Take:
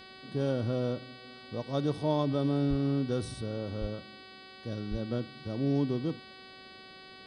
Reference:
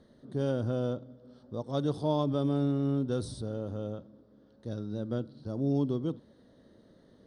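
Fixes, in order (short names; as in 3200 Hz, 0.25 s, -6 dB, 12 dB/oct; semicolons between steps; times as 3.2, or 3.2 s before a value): de-hum 377.9 Hz, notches 13; de-plosive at 2.69/3.8/4.9; expander -43 dBFS, range -21 dB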